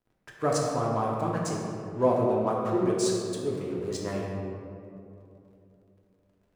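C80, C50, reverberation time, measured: 1.0 dB, 0.0 dB, 2.9 s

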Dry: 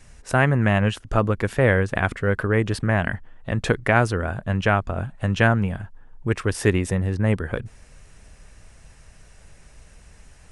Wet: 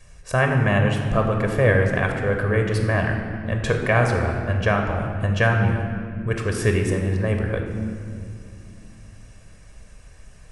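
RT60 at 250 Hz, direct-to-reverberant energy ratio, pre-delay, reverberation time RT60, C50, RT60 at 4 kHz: 3.9 s, 3.0 dB, 24 ms, 2.4 s, 4.0 dB, 1.4 s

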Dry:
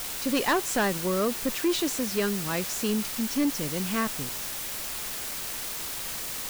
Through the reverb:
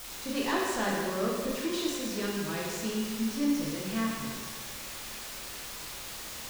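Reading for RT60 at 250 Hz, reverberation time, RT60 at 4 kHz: 1.7 s, 1.6 s, 1.5 s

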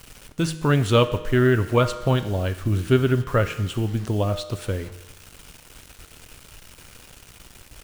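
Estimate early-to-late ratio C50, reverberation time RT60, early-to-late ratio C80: 12.5 dB, 1.1 s, 14.5 dB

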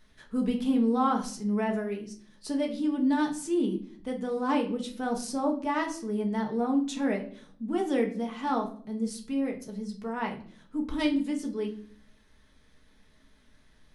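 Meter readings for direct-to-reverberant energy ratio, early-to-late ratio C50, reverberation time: 1.0 dB, 11.5 dB, 0.55 s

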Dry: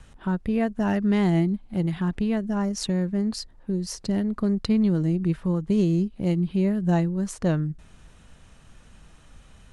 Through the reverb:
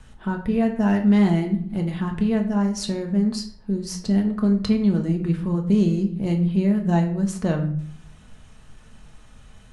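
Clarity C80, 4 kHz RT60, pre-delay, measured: 13.0 dB, 0.40 s, 5 ms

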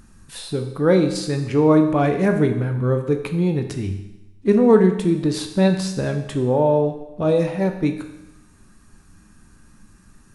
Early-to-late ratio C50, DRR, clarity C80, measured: 8.0 dB, 5.0 dB, 10.0 dB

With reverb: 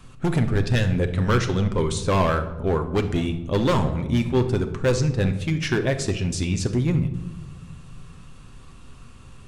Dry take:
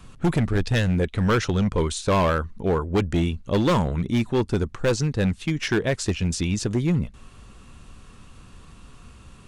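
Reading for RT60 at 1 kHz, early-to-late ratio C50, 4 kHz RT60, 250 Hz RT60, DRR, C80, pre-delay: 1.0 s, 11.0 dB, 0.60 s, 2.1 s, 6.5 dB, 14.0 dB, 8 ms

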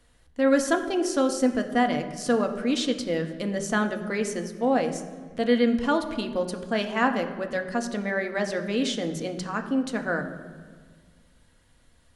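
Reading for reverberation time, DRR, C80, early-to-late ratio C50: 1.6 s, 5.0 dB, 11.5 dB, 10.0 dB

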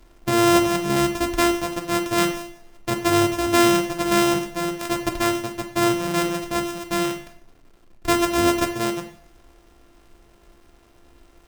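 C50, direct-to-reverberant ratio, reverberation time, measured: 9.5 dB, 5.0 dB, 0.55 s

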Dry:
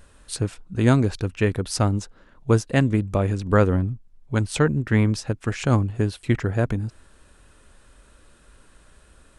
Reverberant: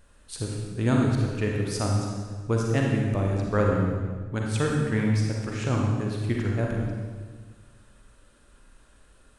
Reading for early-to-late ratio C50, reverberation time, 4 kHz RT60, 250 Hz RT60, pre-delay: 0.0 dB, 1.5 s, 1.3 s, 1.8 s, 36 ms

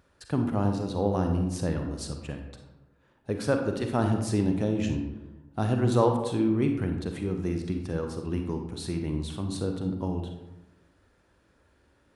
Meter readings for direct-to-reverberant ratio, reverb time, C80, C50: 4.0 dB, 1.0 s, 8.0 dB, 5.5 dB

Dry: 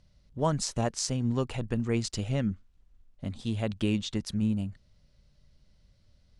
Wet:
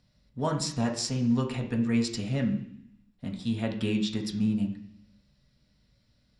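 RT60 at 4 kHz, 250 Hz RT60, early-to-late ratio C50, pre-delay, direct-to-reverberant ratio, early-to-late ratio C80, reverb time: 0.90 s, 0.95 s, 8.5 dB, 3 ms, 0.0 dB, 11.5 dB, 0.65 s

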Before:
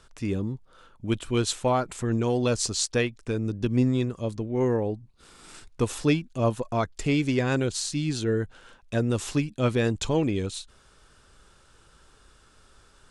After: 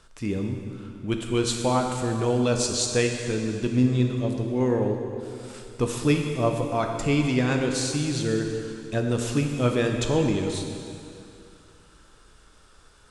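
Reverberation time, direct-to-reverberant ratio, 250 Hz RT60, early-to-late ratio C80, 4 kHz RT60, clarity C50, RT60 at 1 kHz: 2.6 s, 2.5 dB, 2.5 s, 5.0 dB, 2.4 s, 4.0 dB, 2.6 s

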